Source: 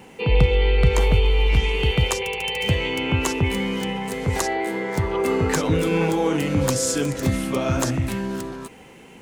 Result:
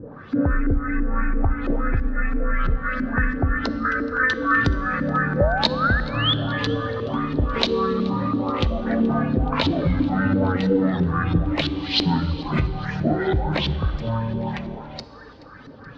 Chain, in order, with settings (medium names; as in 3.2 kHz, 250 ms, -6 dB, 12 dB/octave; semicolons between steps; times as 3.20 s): reverb removal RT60 1.2 s; compression, threshold -24 dBFS, peak gain reduction 12 dB; painted sound rise, 3.11–3.68 s, 940–6700 Hz -32 dBFS; LFO low-pass saw up 5.2 Hz 550–7900 Hz; thinning echo 246 ms, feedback 55%, level -21.5 dB; FDN reverb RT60 2.7 s, high-frequency decay 0.6×, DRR 12 dB; speed mistake 78 rpm record played at 45 rpm; trim +5.5 dB